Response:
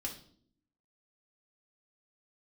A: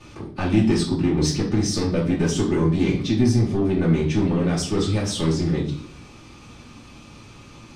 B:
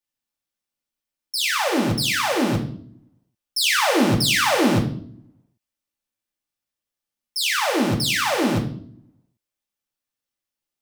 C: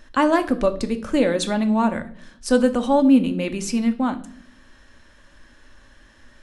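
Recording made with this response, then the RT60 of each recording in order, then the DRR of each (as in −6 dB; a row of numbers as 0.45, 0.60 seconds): B; 0.55, 0.60, 0.60 seconds; −10.5, −1.5, 7.0 decibels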